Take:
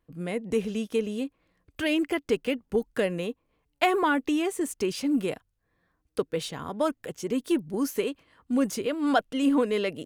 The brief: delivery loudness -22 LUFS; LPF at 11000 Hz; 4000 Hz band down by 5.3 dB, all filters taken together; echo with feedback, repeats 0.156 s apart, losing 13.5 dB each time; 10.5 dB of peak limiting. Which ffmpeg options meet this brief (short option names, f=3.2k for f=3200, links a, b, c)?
-af "lowpass=11k,equalizer=f=4k:t=o:g=-8,alimiter=limit=-20.5dB:level=0:latency=1,aecho=1:1:156|312:0.211|0.0444,volume=9dB"